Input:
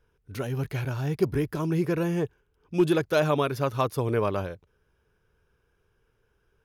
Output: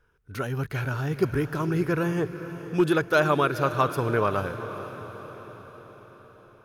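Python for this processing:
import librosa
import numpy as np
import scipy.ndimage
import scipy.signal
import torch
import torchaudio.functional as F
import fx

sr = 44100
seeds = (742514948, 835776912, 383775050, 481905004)

y = fx.peak_eq(x, sr, hz=1400.0, db=8.5, octaves=0.71)
y = fx.echo_diffused(y, sr, ms=478, feedback_pct=57, wet_db=-12)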